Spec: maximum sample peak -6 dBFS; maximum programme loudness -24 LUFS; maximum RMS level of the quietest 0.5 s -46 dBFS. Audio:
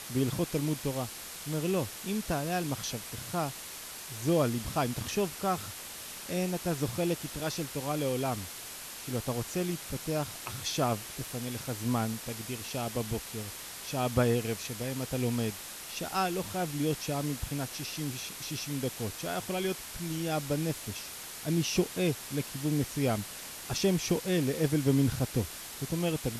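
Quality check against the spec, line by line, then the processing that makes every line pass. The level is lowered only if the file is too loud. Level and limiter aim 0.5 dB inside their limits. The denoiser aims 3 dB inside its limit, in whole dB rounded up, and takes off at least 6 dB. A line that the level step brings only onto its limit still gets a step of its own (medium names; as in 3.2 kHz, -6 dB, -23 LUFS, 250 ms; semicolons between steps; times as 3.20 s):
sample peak -12.5 dBFS: pass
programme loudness -32.5 LUFS: pass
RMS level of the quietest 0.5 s -43 dBFS: fail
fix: noise reduction 6 dB, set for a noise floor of -43 dBFS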